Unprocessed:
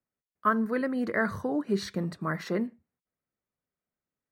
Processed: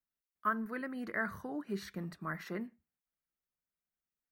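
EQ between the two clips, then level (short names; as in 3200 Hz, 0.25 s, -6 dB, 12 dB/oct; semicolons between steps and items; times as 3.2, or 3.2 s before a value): bell 100 Hz -10.5 dB 1.2 oct; dynamic EQ 4800 Hz, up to -4 dB, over -45 dBFS, Q 0.98; graphic EQ 125/250/500/1000/2000/4000/8000 Hz -4/-7/-12/-6/-3/-7/-8 dB; +1.0 dB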